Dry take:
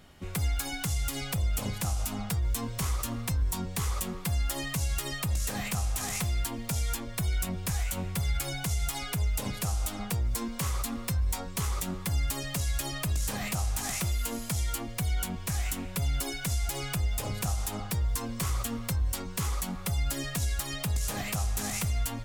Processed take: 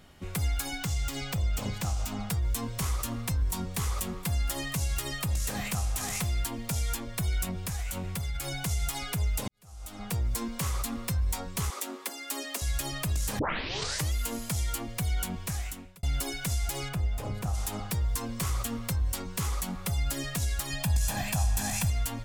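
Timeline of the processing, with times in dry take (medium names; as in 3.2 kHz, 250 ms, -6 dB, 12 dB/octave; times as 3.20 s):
0.78–2.20 s: peaking EQ 11 kHz -12 dB 0.44 oct
2.74–5.78 s: delay 711 ms -21 dB
7.49–8.54 s: compression, threshold -29 dBFS
9.48–10.16 s: fade in quadratic
11.70–12.62 s: steep high-pass 230 Hz 96 dB/octave
13.39 s: tape start 0.75 s
15.40–16.03 s: fade out linear
16.88–17.53 s: treble shelf 3 kHz -> 2 kHz -11.5 dB
20.70–21.90 s: comb 1.2 ms, depth 60%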